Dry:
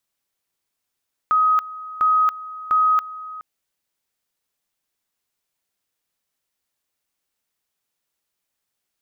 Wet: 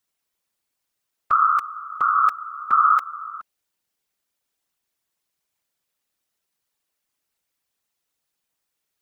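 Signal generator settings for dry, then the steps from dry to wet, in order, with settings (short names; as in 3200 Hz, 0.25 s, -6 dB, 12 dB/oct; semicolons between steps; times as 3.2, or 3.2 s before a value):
two-level tone 1260 Hz -13.5 dBFS, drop 17.5 dB, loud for 0.28 s, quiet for 0.42 s, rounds 3
whisperiser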